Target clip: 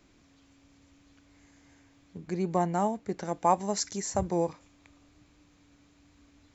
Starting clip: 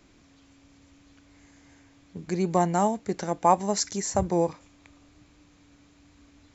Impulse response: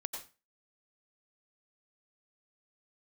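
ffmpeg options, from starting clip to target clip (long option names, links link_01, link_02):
-filter_complex "[0:a]asettb=1/sr,asplit=3[link_01][link_02][link_03];[link_01]atrim=end=2.174[link_04];[link_02]atrim=start=2.17:end=3.25,asetpts=PTS-STARTPTS,afade=type=in:duration=0.004:curve=qsin,afade=type=out:start_time=1.076:duration=0.004:curve=qsin,highshelf=frequency=3800:gain=-7[link_05];[link_03]atrim=start=3.246[link_06];[link_04][link_05]acrossfade=duration=0.004:curve1=hsin:curve2=qsin[link_07];[link_07][link_06]acrossfade=duration=0.004:curve1=qsin:curve2=hsin,volume=-4dB"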